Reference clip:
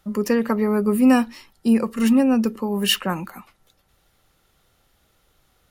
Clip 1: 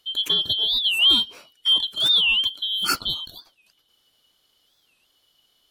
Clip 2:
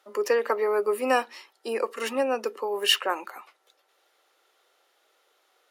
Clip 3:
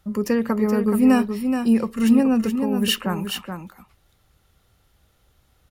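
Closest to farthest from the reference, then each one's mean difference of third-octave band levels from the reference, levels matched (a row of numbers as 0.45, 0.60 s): 3, 2, 1; 3.5, 6.5, 12.0 dB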